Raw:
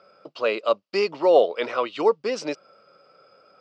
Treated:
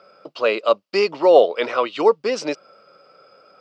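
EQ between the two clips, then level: low shelf 85 Hz -8 dB; +4.5 dB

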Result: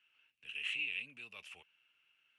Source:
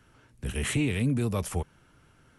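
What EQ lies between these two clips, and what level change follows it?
band-pass 2700 Hz, Q 11; +5.0 dB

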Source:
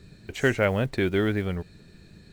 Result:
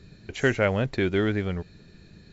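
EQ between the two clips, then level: brick-wall FIR low-pass 7600 Hz; 0.0 dB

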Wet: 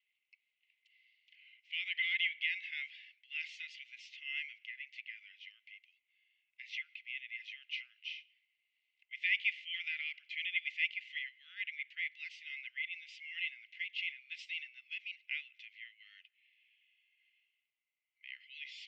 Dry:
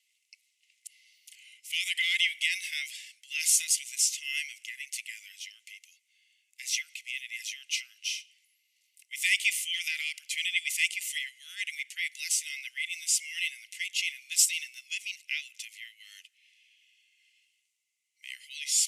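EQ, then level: Bessel high-pass 1400 Hz; Bessel low-pass 1900 Hz, order 6; 0.0 dB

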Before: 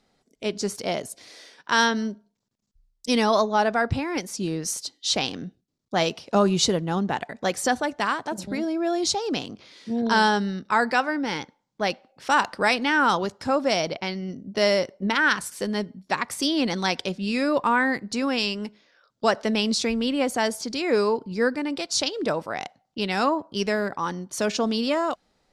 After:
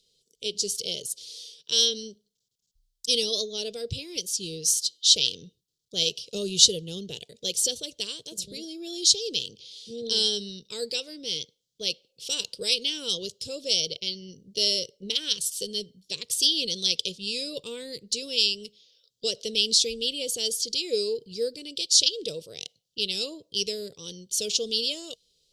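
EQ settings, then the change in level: EQ curve 150 Hz 0 dB, 260 Hz -12 dB, 470 Hz +5 dB, 800 Hz -28 dB, 1800 Hz -23 dB, 3100 Hz +14 dB; -7.5 dB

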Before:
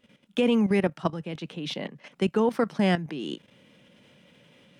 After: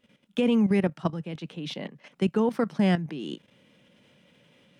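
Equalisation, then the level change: dynamic EQ 160 Hz, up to +5 dB, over -37 dBFS, Q 0.81; -3.0 dB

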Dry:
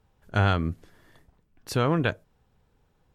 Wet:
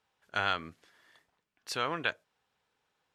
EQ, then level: band-pass 3200 Hz, Q 0.5; 0.0 dB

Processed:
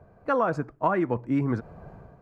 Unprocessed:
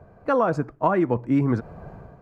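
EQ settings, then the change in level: dynamic EQ 1700 Hz, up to +4 dB, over -33 dBFS, Q 0.84; -4.5 dB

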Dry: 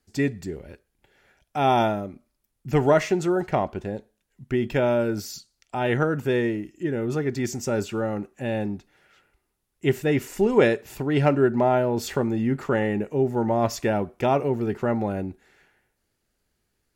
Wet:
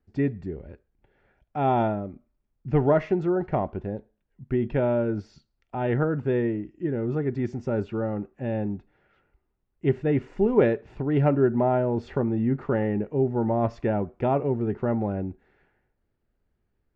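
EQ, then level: tape spacing loss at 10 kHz 42 dB; low shelf 72 Hz +5.5 dB; 0.0 dB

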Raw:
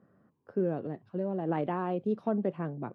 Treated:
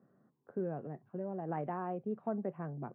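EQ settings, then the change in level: dynamic EQ 310 Hz, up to -7 dB, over -42 dBFS, Q 1.2; speaker cabinet 130–2100 Hz, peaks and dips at 140 Hz +7 dB, 240 Hz +4 dB, 380 Hz +4 dB, 740 Hz +4 dB; -6.0 dB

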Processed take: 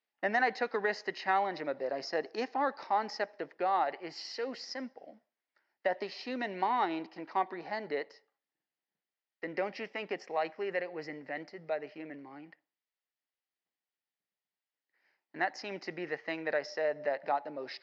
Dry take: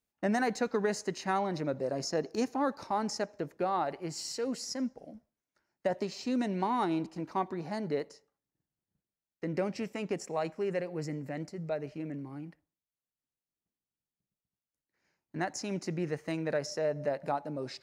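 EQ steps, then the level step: air absorption 300 m; speaker cabinet 400–6200 Hz, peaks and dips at 780 Hz +4 dB, 1900 Hz +8 dB, 3000 Hz +3 dB, 4900 Hz +6 dB; high shelf 3000 Hz +10 dB; 0.0 dB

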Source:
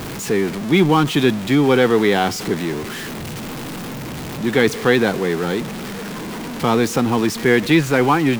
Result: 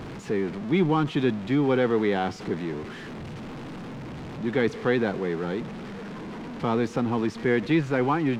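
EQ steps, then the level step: tape spacing loss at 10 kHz 20 dB; -7.0 dB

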